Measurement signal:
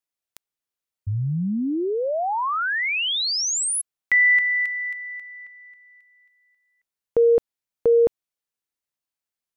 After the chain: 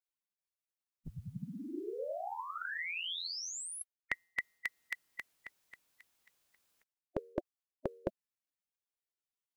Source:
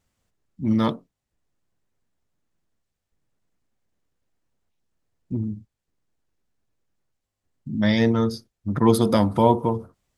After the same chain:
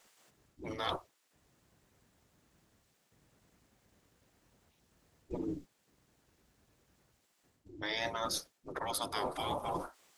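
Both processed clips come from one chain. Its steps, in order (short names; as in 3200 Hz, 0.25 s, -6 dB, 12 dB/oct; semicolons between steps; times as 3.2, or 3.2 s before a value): spectral gate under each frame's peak -15 dB weak; reverse; compressor 10:1, threshold -46 dBFS; reverse; gain +12.5 dB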